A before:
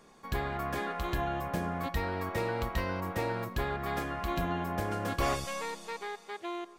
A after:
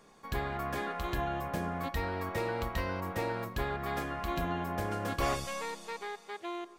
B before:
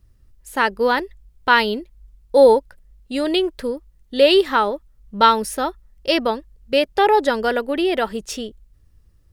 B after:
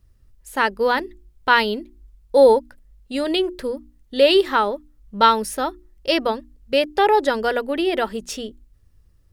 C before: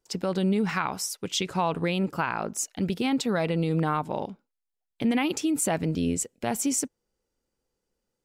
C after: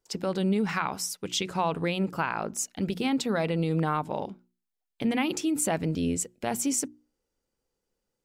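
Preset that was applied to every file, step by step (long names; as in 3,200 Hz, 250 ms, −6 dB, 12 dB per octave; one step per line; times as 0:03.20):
mains-hum notches 60/120/180/240/300/360 Hz
level −1 dB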